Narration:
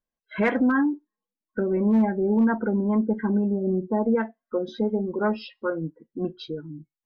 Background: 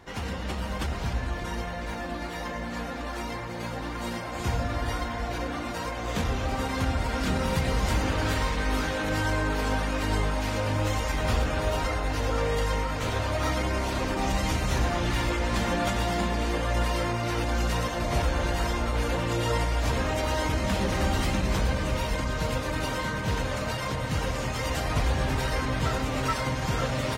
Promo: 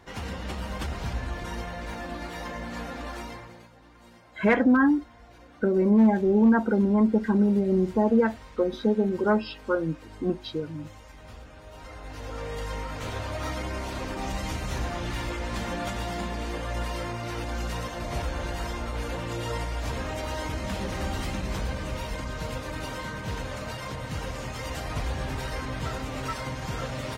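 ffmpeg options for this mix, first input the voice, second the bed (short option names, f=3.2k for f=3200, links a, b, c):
-filter_complex "[0:a]adelay=4050,volume=1.5dB[a];[1:a]volume=13dB,afade=t=out:st=3.08:d=0.6:silence=0.125893,afade=t=in:st=11.68:d=1.28:silence=0.177828[b];[a][b]amix=inputs=2:normalize=0"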